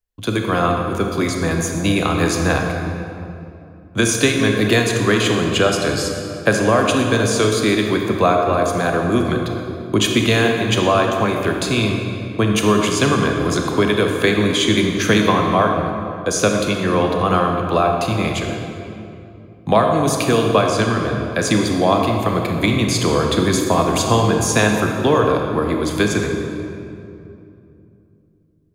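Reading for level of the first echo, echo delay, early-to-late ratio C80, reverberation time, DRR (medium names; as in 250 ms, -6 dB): no echo, no echo, 4.0 dB, 2.7 s, 2.0 dB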